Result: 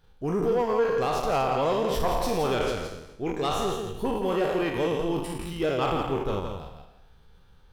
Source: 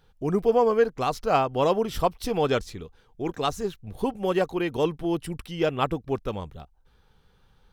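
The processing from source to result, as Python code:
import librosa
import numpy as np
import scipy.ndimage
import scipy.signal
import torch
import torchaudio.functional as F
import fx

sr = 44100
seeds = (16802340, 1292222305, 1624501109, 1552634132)

p1 = fx.spec_trails(x, sr, decay_s=0.91)
p2 = fx.low_shelf(p1, sr, hz=73.0, db=5.0)
p3 = fx.level_steps(p2, sr, step_db=14)
p4 = p2 + (p3 * librosa.db_to_amplitude(-1.0))
p5 = 10.0 ** (-12.0 / 20.0) * np.tanh(p4 / 10.0 ** (-12.0 / 20.0))
p6 = p5 + 10.0 ** (-6.5 / 20.0) * np.pad(p5, (int(168 * sr / 1000.0), 0))[:len(p5)]
y = p6 * librosa.db_to_amplitude(-6.0)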